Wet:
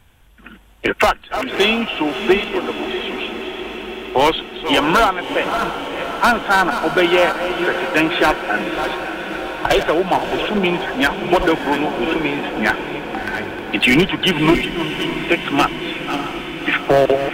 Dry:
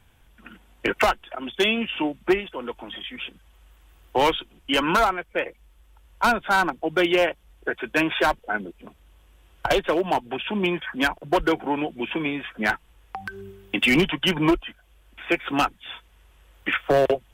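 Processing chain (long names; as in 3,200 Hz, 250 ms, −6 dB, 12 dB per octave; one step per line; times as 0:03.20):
delay that plays each chunk backwards 407 ms, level −9.5 dB
pitch-shifted copies added +3 semitones −17 dB
feedback delay with all-pass diffusion 627 ms, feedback 73%, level −9.5 dB
level +5.5 dB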